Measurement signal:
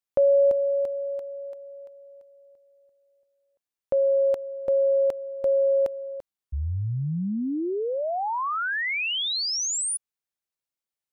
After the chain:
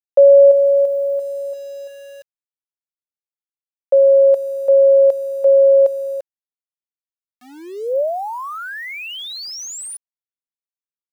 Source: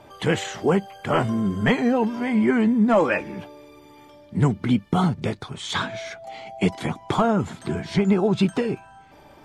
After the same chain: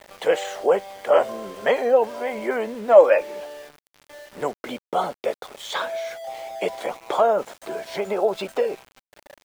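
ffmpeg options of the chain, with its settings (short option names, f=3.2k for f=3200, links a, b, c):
-af "highpass=f=550:t=q:w=4.9,aeval=exprs='val(0)*gte(abs(val(0)),0.015)':c=same,volume=-3dB"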